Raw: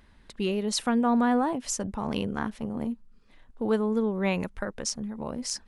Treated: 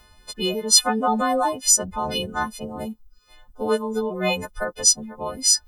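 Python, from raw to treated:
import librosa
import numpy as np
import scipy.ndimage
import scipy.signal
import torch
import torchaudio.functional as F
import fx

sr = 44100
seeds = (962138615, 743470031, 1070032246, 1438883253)

y = fx.freq_snap(x, sr, grid_st=3)
y = fx.dereverb_blind(y, sr, rt60_s=0.63)
y = fx.graphic_eq_10(y, sr, hz=(125, 250, 2000, 8000), db=(-3, -10, -9, -5))
y = y * librosa.db_to_amplitude(9.0)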